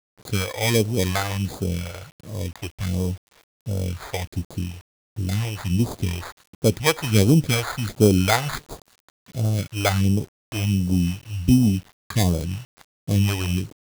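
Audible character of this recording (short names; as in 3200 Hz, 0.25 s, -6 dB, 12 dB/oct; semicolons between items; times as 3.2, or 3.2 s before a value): aliases and images of a low sample rate 2800 Hz, jitter 0%; phasing stages 2, 1.4 Hz, lowest notch 190–1900 Hz; a quantiser's noise floor 8-bit, dither none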